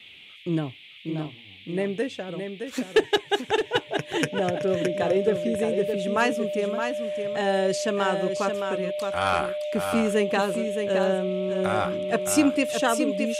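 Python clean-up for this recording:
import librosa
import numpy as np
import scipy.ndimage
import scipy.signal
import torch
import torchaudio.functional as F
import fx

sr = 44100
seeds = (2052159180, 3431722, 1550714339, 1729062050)

y = fx.notch(x, sr, hz=600.0, q=30.0)
y = fx.noise_reduce(y, sr, print_start_s=0.0, print_end_s=0.5, reduce_db=26.0)
y = fx.fix_echo_inverse(y, sr, delay_ms=617, level_db=-7.0)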